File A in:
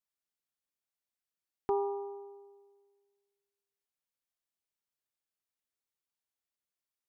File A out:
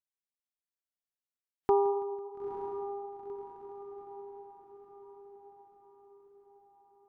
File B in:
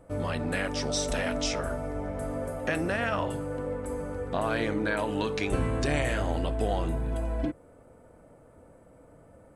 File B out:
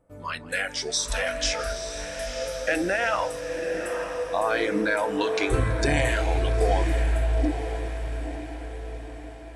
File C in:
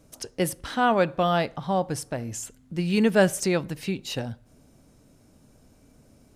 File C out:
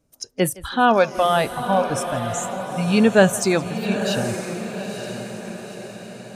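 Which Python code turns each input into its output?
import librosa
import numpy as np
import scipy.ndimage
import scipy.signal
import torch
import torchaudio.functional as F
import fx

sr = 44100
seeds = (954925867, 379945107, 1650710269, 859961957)

y = fx.noise_reduce_blind(x, sr, reduce_db=17)
y = fx.echo_diffused(y, sr, ms=926, feedback_pct=51, wet_db=-8.5)
y = fx.echo_warbled(y, sr, ms=165, feedback_pct=63, rate_hz=2.8, cents=68, wet_db=-21.5)
y = F.gain(torch.from_numpy(y), 5.5).numpy()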